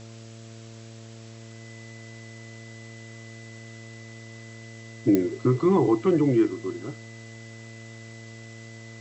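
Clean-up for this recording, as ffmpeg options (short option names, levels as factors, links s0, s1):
-af "adeclick=t=4,bandreject=f=113:t=h:w=4,bandreject=f=226:t=h:w=4,bandreject=f=339:t=h:w=4,bandreject=f=452:t=h:w=4,bandreject=f=565:t=h:w=4,bandreject=f=678:t=h:w=4,bandreject=f=2000:w=30,afftdn=nr=26:nf=-43"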